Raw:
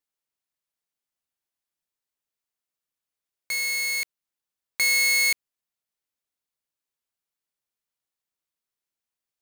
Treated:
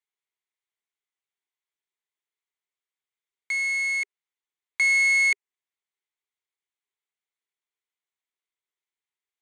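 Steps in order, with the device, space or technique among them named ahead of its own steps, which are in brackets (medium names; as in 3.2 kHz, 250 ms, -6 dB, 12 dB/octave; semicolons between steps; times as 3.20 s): phone speaker on a table (cabinet simulation 360–8500 Hz, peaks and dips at 400 Hz +8 dB, 560 Hz -9 dB, 990 Hz +3 dB, 2.1 kHz +9 dB, 3.4 kHz +5 dB, 5.1 kHz -9 dB); dynamic bell 3.5 kHz, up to -6 dB, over -36 dBFS, Q 2.3; trim -4.5 dB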